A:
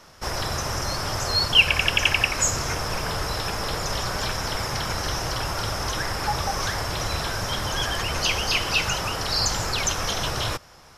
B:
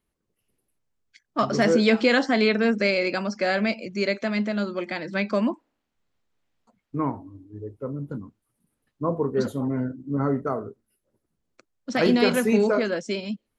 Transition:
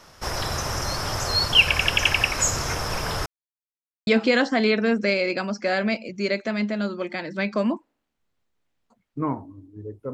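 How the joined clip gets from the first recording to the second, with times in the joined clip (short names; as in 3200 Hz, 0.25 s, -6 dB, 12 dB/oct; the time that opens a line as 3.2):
A
3.26–4.07 mute
4.07 switch to B from 1.84 s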